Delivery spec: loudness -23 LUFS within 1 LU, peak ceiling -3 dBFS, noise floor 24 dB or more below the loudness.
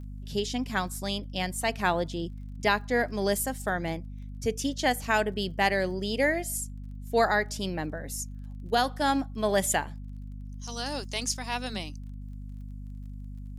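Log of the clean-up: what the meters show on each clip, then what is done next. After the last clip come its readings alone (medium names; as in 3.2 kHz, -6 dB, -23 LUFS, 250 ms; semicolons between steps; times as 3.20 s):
tick rate 26 per s; hum 50 Hz; highest harmonic 250 Hz; hum level -37 dBFS; loudness -29.0 LUFS; peak level -11.5 dBFS; loudness target -23.0 LUFS
-> de-click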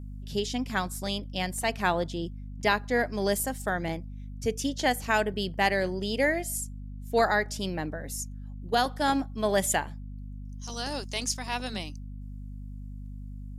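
tick rate 0.074 per s; hum 50 Hz; highest harmonic 250 Hz; hum level -37 dBFS
-> hum notches 50/100/150/200/250 Hz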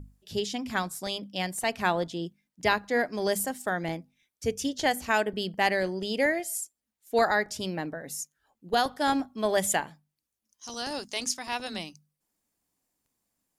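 hum not found; loudness -29.0 LUFS; peak level -11.5 dBFS; loudness target -23.0 LUFS
-> trim +6 dB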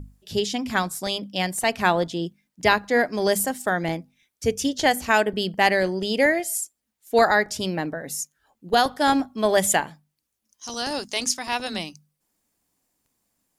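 loudness -23.0 LUFS; peak level -5.5 dBFS; noise floor -79 dBFS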